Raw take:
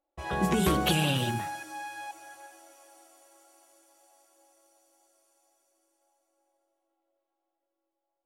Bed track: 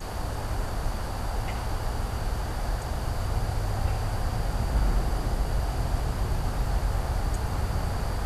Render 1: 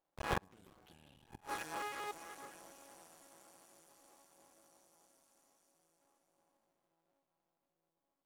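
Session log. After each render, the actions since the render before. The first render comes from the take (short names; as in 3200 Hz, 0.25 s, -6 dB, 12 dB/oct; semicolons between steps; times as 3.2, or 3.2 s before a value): cycle switcher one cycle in 2, muted; flipped gate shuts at -21 dBFS, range -35 dB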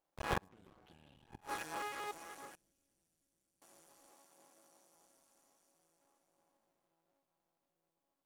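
0.48–1.4 LPF 2500 Hz -> 5100 Hz 6 dB/oct; 2.55–3.62 passive tone stack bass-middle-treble 10-0-1; 4.12–4.94 HPF 140 Hz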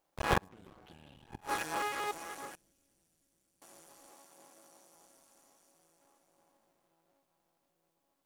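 gain +7 dB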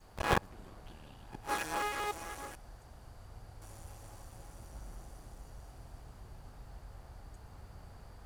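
add bed track -23.5 dB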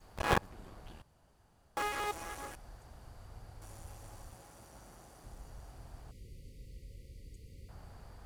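1.02–1.77 room tone; 4.35–5.24 HPF 200 Hz 6 dB/oct; 6.11–7.69 brick-wall FIR band-stop 560–1900 Hz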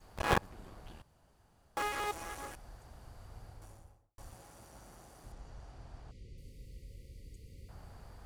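3.43–4.18 studio fade out; 5.32–6.38 LPF 6100 Hz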